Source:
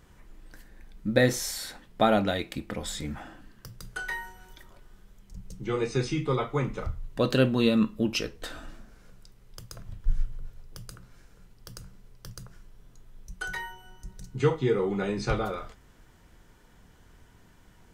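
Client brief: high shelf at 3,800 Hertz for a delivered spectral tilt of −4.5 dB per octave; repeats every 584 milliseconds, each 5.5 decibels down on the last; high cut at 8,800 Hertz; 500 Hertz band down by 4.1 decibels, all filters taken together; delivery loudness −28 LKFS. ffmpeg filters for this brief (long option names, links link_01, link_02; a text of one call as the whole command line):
ffmpeg -i in.wav -af "lowpass=8800,equalizer=frequency=500:width_type=o:gain=-5,highshelf=frequency=3800:gain=6,aecho=1:1:584|1168|1752|2336|2920|3504|4088:0.531|0.281|0.149|0.079|0.0419|0.0222|0.0118,volume=2dB" out.wav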